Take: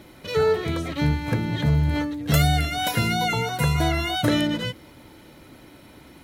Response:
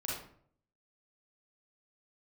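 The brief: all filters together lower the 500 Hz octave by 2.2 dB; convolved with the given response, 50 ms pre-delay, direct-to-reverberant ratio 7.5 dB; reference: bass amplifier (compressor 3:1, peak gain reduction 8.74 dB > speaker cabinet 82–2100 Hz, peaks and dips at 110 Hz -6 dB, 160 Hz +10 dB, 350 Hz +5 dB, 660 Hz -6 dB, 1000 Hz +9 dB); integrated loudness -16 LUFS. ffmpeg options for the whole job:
-filter_complex "[0:a]equalizer=f=500:t=o:g=-3.5,asplit=2[a][b];[1:a]atrim=start_sample=2205,adelay=50[c];[b][c]afir=irnorm=-1:irlink=0,volume=-10dB[d];[a][d]amix=inputs=2:normalize=0,acompressor=threshold=-26dB:ratio=3,highpass=f=82:w=0.5412,highpass=f=82:w=1.3066,equalizer=f=110:t=q:w=4:g=-6,equalizer=f=160:t=q:w=4:g=10,equalizer=f=350:t=q:w=4:g=5,equalizer=f=660:t=q:w=4:g=-6,equalizer=f=1k:t=q:w=4:g=9,lowpass=f=2.1k:w=0.5412,lowpass=f=2.1k:w=1.3066,volume=11dB"

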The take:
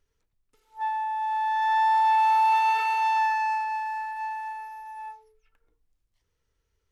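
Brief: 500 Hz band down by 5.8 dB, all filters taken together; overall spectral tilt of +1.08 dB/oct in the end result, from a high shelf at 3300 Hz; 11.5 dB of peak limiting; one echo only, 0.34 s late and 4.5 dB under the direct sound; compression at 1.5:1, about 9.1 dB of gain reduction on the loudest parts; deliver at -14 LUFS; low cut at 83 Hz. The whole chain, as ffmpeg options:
-af "highpass=83,equalizer=f=500:t=o:g=-7,highshelf=f=3.3k:g=7,acompressor=threshold=-46dB:ratio=1.5,alimiter=level_in=12dB:limit=-24dB:level=0:latency=1,volume=-12dB,aecho=1:1:340:0.596,volume=26.5dB"

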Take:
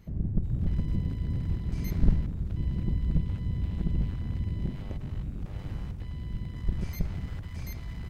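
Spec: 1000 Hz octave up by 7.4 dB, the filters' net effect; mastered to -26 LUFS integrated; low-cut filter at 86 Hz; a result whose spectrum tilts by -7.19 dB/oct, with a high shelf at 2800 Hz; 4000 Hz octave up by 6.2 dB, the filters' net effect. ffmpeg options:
-af "highpass=86,equalizer=f=1k:t=o:g=8,highshelf=f=2.8k:g=5,equalizer=f=4k:t=o:g=3.5,volume=9dB"

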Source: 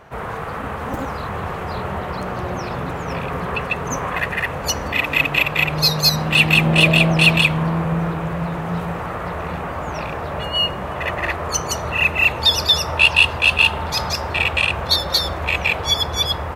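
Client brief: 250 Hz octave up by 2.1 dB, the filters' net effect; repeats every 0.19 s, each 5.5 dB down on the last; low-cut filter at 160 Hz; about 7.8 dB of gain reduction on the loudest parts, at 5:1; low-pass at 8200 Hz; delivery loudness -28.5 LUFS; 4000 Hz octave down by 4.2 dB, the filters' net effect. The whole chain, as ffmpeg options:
-af "highpass=160,lowpass=8.2k,equalizer=f=250:t=o:g=7,equalizer=f=4k:t=o:g=-5.5,acompressor=threshold=-19dB:ratio=5,aecho=1:1:190|380|570|760|950|1140|1330:0.531|0.281|0.149|0.079|0.0419|0.0222|0.0118,volume=-6.5dB"

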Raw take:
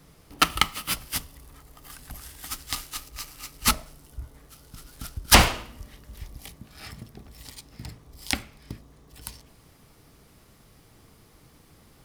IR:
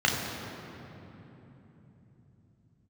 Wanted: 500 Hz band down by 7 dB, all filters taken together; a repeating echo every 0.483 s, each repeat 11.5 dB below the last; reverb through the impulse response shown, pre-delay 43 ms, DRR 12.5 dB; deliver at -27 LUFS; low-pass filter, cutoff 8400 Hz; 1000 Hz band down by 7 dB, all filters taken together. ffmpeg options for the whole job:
-filter_complex "[0:a]lowpass=8.4k,equalizer=f=500:t=o:g=-6.5,equalizer=f=1k:t=o:g=-8,aecho=1:1:483|966|1449:0.266|0.0718|0.0194,asplit=2[a][b];[1:a]atrim=start_sample=2205,adelay=43[c];[b][c]afir=irnorm=-1:irlink=0,volume=-27.5dB[d];[a][d]amix=inputs=2:normalize=0,volume=0.5dB"

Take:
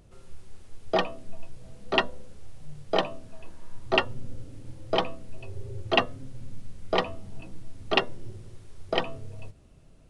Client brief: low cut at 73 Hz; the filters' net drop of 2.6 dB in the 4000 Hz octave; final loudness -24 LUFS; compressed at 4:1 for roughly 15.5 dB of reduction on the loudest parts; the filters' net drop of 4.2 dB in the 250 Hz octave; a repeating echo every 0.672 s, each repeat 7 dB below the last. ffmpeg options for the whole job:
-af "highpass=73,equalizer=f=250:t=o:g=-6.5,equalizer=f=4k:t=o:g=-4,acompressor=threshold=-38dB:ratio=4,aecho=1:1:672|1344|2016|2688|3360:0.447|0.201|0.0905|0.0407|0.0183,volume=20dB"

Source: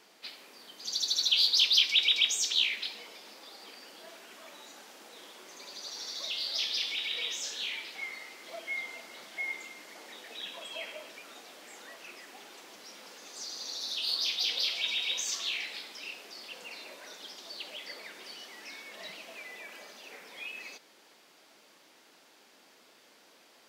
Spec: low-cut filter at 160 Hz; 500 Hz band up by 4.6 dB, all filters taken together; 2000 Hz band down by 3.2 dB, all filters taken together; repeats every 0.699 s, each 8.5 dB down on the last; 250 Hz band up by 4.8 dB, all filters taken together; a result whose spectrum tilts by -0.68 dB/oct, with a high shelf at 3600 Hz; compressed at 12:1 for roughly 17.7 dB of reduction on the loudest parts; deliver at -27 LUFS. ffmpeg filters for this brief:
-af "highpass=160,equalizer=f=250:t=o:g=5,equalizer=f=500:t=o:g=5,equalizer=f=2k:t=o:g=-7,highshelf=f=3.6k:g=6.5,acompressor=threshold=-37dB:ratio=12,aecho=1:1:699|1398|2097|2796:0.376|0.143|0.0543|0.0206,volume=13.5dB"

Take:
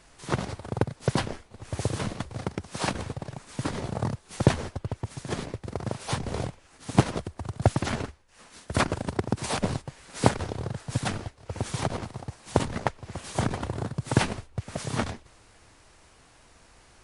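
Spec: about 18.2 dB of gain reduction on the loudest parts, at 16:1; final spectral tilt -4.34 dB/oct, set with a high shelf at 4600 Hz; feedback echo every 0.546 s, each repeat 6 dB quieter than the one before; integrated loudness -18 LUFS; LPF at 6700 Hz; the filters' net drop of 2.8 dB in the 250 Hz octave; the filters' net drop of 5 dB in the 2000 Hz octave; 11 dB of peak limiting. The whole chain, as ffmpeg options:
-af "lowpass=6.7k,equalizer=f=250:t=o:g=-4,equalizer=f=2k:t=o:g=-8,highshelf=f=4.6k:g=8,acompressor=threshold=-33dB:ratio=16,alimiter=level_in=4.5dB:limit=-24dB:level=0:latency=1,volume=-4.5dB,aecho=1:1:546|1092|1638|2184|2730|3276:0.501|0.251|0.125|0.0626|0.0313|0.0157,volume=23.5dB"

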